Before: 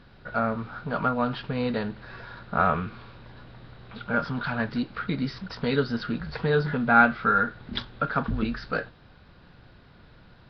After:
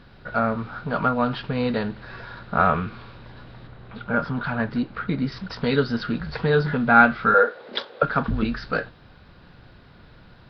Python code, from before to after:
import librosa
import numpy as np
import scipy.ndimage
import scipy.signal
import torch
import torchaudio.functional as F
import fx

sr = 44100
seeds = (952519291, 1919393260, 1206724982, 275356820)

y = fx.high_shelf(x, sr, hz=3500.0, db=-11.0, at=(3.67, 5.32))
y = fx.highpass_res(y, sr, hz=500.0, q=4.9, at=(7.34, 8.03))
y = y * 10.0 ** (3.5 / 20.0)